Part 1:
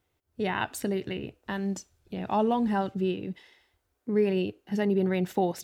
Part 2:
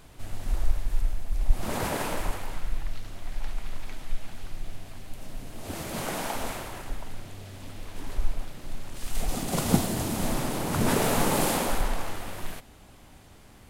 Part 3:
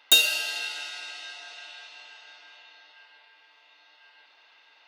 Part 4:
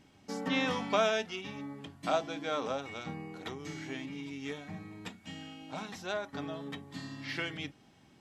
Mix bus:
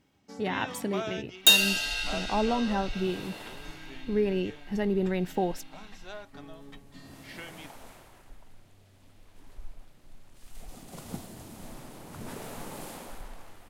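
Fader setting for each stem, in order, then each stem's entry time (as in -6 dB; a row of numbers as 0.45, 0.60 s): -2.0, -16.5, 0.0, -7.5 dB; 0.00, 1.40, 1.35, 0.00 s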